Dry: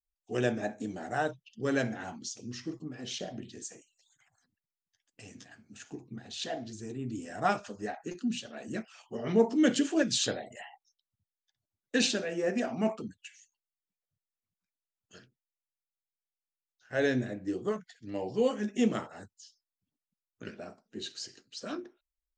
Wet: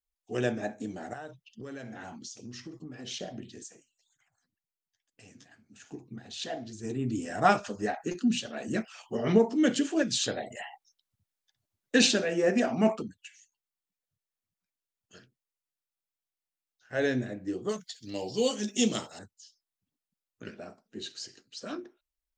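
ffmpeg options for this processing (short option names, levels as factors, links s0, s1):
-filter_complex "[0:a]asettb=1/sr,asplit=3[s0][s1][s2];[s0]atrim=end=1.134[s3];[s1]atrim=start=1.13:end=3.07,asetpts=PTS-STARTPTS,afade=t=in:d=0.004:c=qsin,afade=t=out:st=1.936:d=0.004:c=qsin,acompressor=threshold=0.0126:ratio=8:attack=3.2:release=140:knee=1:detection=peak[s4];[s2]atrim=start=3.066[s5];[s3][s4]acrossfade=d=0.004:c1=hsin:c2=qsin[s6];[s6][s5]acrossfade=d=0.004:c1=qsin:c2=hsin,asettb=1/sr,asplit=3[s7][s8][s9];[s7]atrim=end=3.634[s10];[s8]atrim=start=3.63:end=5.84,asetpts=PTS-STARTPTS,afade=t=in:d=0.004:c=qsin,afade=t=out:st=2.206:d=0.004:c=qsin,flanger=delay=0:depth=8.9:regen=76:speed=2:shape=triangular[s11];[s9]atrim=start=5.836[s12];[s10][s11]acrossfade=d=0.004:c1=hsin:c2=qsin[s13];[s13][s12]acrossfade=d=0.004:c1=qsin:c2=hsin,asplit=3[s14][s15][s16];[s14]afade=t=out:st=6.83:d=0.02[s17];[s15]acontrast=45,afade=t=in:st=6.83:d=0.02,afade=t=out:st=9.37:d=0.02[s18];[s16]afade=t=in:st=9.37:d=0.02[s19];[s17][s18][s19]amix=inputs=3:normalize=0,asettb=1/sr,asplit=3[s20][s21][s22];[s20]atrim=end=10.374[s23];[s21]atrim=start=10.37:end=13.03,asetpts=PTS-STARTPTS,afade=t=in:d=0.004:c=qsin,afade=t=out:st=2.656:d=0.004:c=qsin,acontrast=28[s24];[s22]atrim=start=13.026[s25];[s23][s24]acrossfade=d=0.004:c1=hsin:c2=qsin[s26];[s26][s25]acrossfade=d=0.004:c1=qsin:c2=hsin,asettb=1/sr,asplit=3[s27][s28][s29];[s27]atrim=end=17.694[s30];[s28]atrim=start=17.69:end=19.19,asetpts=PTS-STARTPTS,afade=t=in:d=0.004:c=qsin,afade=t=out:st=1.496:d=0.004:c=qsin,highshelf=f=2700:t=q:w=1.5:g=13[s31];[s29]atrim=start=19.186[s32];[s30][s31]acrossfade=d=0.004:c1=hsin:c2=qsin[s33];[s33][s32]acrossfade=d=0.004:c1=qsin:c2=hsin"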